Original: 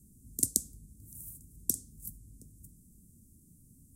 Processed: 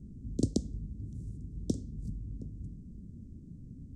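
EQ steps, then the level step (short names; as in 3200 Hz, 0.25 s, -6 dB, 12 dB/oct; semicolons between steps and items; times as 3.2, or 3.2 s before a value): air absorption 130 m; tape spacing loss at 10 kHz 23 dB; +13.5 dB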